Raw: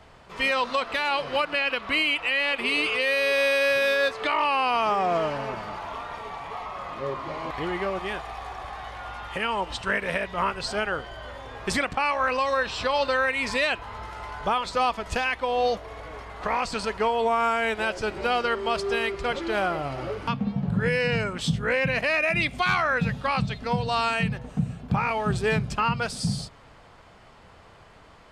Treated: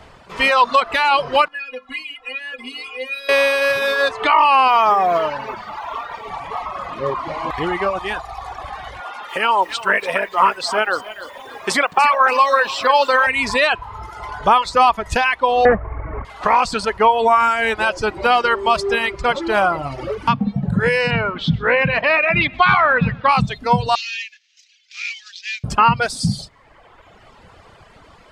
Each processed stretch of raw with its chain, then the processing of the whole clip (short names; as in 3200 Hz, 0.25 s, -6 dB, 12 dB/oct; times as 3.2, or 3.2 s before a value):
1.48–3.29 notches 50/100/150/200/250/300/350/400 Hz + metallic resonator 250 Hz, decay 0.21 s, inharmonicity 0.008
4.68–6.28 LPF 6400 Hz + low shelf 270 Hz -7.5 dB + companded quantiser 8-bit
9–13.27 HPF 290 Hz + lo-fi delay 0.29 s, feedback 35%, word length 8-bit, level -9.5 dB
15.65–16.25 half-waves squared off + elliptic low-pass 2100 Hz, stop band 80 dB + low shelf 180 Hz +7.5 dB
21.11–23.29 LPF 3900 Hz 24 dB/oct + feedback echo 0.127 s, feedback 51%, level -13 dB
23.95–25.64 CVSD 32 kbps + steep high-pass 2200 Hz + upward compressor, threshold -56 dBFS
whole clip: reverb removal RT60 1.3 s; dynamic EQ 1000 Hz, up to +6 dB, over -41 dBFS, Q 1.7; gain +8 dB